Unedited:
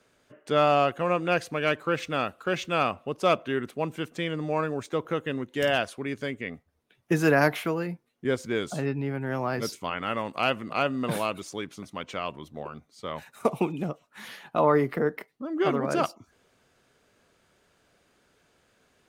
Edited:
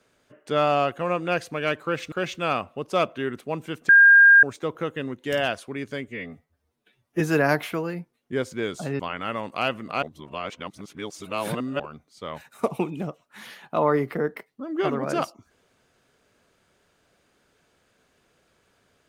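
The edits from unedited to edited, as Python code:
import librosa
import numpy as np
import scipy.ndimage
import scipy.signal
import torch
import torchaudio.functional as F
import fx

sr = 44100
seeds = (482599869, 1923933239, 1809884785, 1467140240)

y = fx.edit(x, sr, fx.cut(start_s=2.12, length_s=0.3),
    fx.bleep(start_s=4.19, length_s=0.54, hz=1610.0, db=-9.0),
    fx.stretch_span(start_s=6.38, length_s=0.75, factor=1.5),
    fx.cut(start_s=8.92, length_s=0.89),
    fx.reverse_span(start_s=10.84, length_s=1.77), tone=tone)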